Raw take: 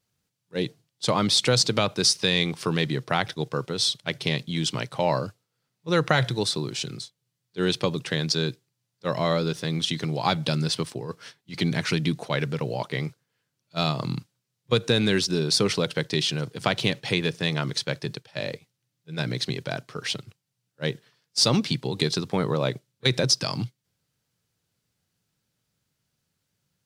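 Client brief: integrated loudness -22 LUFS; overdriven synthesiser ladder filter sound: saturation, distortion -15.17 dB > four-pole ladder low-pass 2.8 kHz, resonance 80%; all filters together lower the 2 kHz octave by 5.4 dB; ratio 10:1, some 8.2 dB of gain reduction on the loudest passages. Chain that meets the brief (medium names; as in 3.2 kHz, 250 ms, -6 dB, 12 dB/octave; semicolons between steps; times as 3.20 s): peaking EQ 2 kHz -4.5 dB; compression 10:1, threshold -25 dBFS; saturation -22 dBFS; four-pole ladder low-pass 2.8 kHz, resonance 80%; trim +21.5 dB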